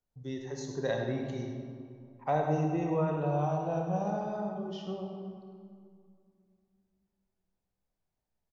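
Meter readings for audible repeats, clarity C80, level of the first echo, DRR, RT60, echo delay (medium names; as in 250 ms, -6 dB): 1, 3.5 dB, -9.0 dB, 1.0 dB, 2.4 s, 102 ms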